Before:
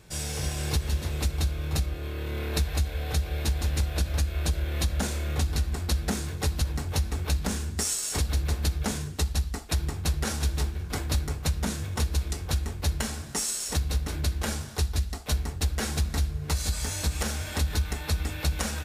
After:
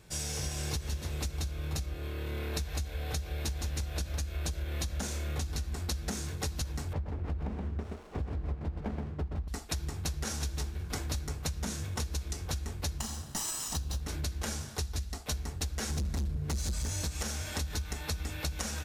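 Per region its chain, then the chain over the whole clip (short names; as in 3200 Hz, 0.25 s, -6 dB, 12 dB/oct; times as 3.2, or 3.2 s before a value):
6.93–9.48 LPF 1300 Hz + echo 0.125 s -4.5 dB + running maximum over 17 samples
12.98–14.01 minimum comb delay 1 ms + bell 2100 Hz -11.5 dB 0.26 oct
15.9–17.05 low shelf 400 Hz +8 dB + hard clip -20.5 dBFS
whole clip: dynamic EQ 6100 Hz, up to +6 dB, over -49 dBFS, Q 2.4; compressor, threshold -27 dBFS; gain -3.5 dB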